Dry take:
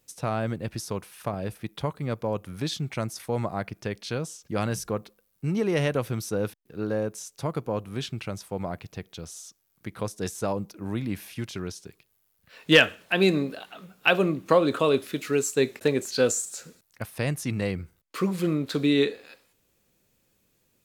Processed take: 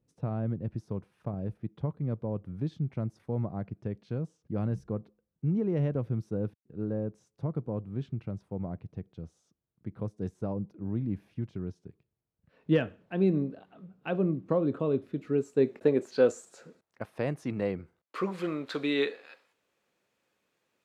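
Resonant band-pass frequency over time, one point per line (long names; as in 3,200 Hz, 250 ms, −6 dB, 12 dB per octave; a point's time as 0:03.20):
resonant band-pass, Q 0.6
0:15.13 130 Hz
0:16.12 490 Hz
0:17.77 490 Hz
0:18.51 1,200 Hz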